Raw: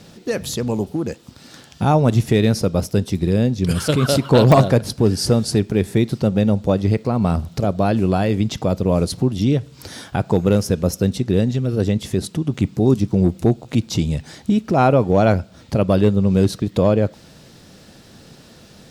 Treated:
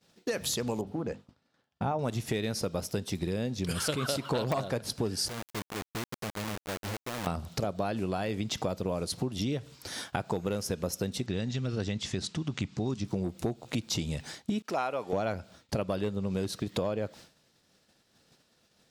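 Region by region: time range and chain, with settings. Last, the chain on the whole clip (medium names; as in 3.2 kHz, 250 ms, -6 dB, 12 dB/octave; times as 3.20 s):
0.81–1.99 s: low-pass 1 kHz 6 dB/octave + peaking EQ 340 Hz -6.5 dB 0.21 oct + hum notches 50/100/150/200/250/300 Hz
5.28–7.27 s: inverted gate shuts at -19 dBFS, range -25 dB + bass shelf 130 Hz +7 dB + companded quantiser 2-bit
11.26–13.05 s: low-pass 7.3 kHz 24 dB/octave + peaking EQ 470 Hz -6.5 dB 1.7 oct
14.62–15.13 s: high-pass 840 Hz 6 dB/octave + expander -45 dBFS
whole clip: expander -32 dBFS; bass shelf 410 Hz -9.5 dB; compression 6:1, threshold -28 dBFS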